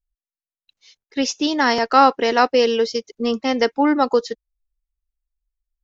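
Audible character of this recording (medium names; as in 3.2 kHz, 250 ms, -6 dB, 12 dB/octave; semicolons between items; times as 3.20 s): noise floor -96 dBFS; spectral tilt -0.5 dB/octave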